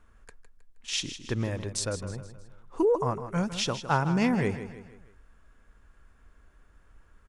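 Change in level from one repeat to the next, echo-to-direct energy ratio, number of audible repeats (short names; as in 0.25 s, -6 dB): -7.0 dB, -10.5 dB, 4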